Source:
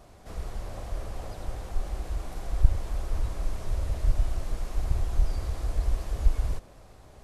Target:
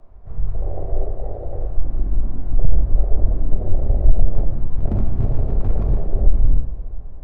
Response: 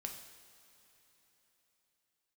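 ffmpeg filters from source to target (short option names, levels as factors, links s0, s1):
-filter_complex "[0:a]lowpass=1200,afwtdn=0.0178,asplit=3[s0][s1][s2];[s0]afade=t=out:st=1.08:d=0.02[s3];[s1]acompressor=threshold=0.0224:ratio=6,afade=t=in:st=1.08:d=0.02,afade=t=out:st=1.51:d=0.02[s4];[s2]afade=t=in:st=1.51:d=0.02[s5];[s3][s4][s5]amix=inputs=3:normalize=0,afreqshift=-19,asettb=1/sr,asplit=3[s6][s7][s8];[s6]atrim=end=4.334[s9];[s7]atrim=start=4.33:end=6,asetpts=PTS-STARTPTS,afade=t=in:d=0.004:c=qsin,afade=t=out:st=1.666:d=0.004:c=qsin,aeval=exprs='0.0531*(abs(mod(val(0)/0.0531+3,4)-2)-1)':c=same[s10];[s8]atrim=start=5.996[s11];[s9][s10]acrossfade=d=0.004:c1=hsin:c2=qsin[s12];[s12][s11]acrossfade=d=0.004:c1=qsin:c2=hsin[s13];[1:a]atrim=start_sample=2205[s14];[s13][s14]afir=irnorm=-1:irlink=0,alimiter=level_in=7.94:limit=0.891:release=50:level=0:latency=1,volume=0.891"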